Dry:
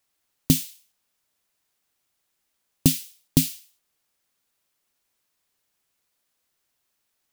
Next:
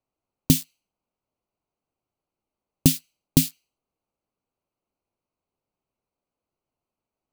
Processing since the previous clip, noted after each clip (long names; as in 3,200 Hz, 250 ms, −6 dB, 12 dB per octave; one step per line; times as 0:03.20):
adaptive Wiener filter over 25 samples
level +1 dB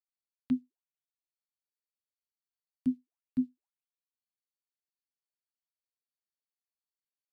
envelope filter 250–4,500 Hz, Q 19, down, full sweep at −22 dBFS
level −1 dB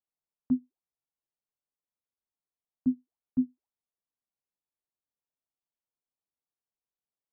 low-pass filter 1,100 Hz 24 dB per octave
level +2.5 dB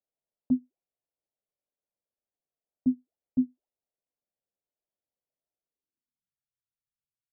low-pass filter sweep 610 Hz → 120 Hz, 0:05.60–0:06.42